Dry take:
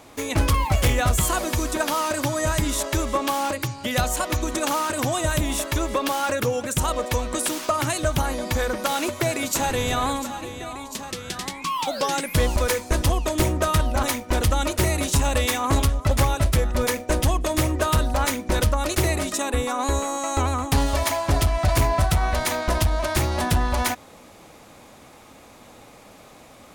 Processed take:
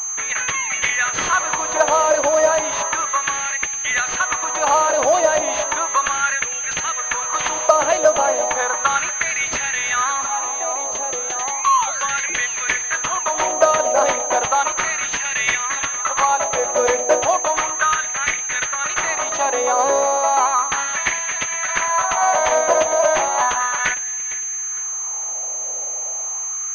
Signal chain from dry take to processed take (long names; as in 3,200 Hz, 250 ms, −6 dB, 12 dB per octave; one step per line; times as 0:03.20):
delay that swaps between a low-pass and a high-pass 228 ms, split 820 Hz, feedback 60%, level −11 dB
auto-filter high-pass sine 0.34 Hz 570–2,000 Hz
switching amplifier with a slow clock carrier 6,300 Hz
level +4.5 dB